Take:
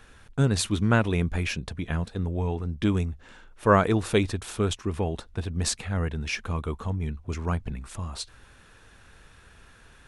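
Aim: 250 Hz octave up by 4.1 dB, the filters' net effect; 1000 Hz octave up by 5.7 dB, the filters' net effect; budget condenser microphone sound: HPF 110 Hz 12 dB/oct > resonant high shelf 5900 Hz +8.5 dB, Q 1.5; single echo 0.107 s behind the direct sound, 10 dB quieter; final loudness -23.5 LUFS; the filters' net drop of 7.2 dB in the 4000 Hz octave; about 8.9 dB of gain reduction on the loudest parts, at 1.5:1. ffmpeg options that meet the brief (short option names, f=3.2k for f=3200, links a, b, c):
-af "equalizer=f=250:t=o:g=5.5,equalizer=f=1k:t=o:g=7.5,equalizer=f=4k:t=o:g=-8.5,acompressor=threshold=-34dB:ratio=1.5,highpass=110,highshelf=f=5.9k:t=q:w=1.5:g=8.5,aecho=1:1:107:0.316,volume=7dB"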